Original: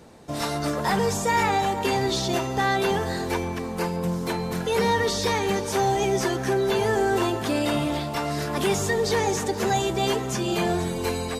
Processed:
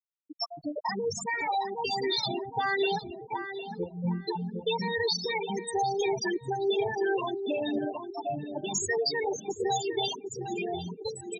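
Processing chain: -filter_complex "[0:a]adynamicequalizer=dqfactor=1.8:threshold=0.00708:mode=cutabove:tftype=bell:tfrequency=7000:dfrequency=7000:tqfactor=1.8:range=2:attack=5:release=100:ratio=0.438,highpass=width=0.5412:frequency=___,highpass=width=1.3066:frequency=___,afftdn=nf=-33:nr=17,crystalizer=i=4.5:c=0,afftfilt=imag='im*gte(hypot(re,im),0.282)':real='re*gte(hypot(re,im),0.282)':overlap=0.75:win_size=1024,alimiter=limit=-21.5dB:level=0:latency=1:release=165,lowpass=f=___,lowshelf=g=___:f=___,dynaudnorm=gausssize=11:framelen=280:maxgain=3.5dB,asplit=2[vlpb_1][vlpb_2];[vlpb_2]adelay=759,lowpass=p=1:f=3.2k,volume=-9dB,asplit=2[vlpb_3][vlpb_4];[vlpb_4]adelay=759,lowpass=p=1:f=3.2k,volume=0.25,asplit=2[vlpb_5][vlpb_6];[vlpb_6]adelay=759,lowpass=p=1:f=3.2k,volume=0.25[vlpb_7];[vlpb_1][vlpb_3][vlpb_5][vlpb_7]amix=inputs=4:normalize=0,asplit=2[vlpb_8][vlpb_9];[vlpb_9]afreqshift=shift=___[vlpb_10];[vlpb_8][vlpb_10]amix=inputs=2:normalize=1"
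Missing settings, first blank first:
54, 54, 11k, -11.5, 110, 2.8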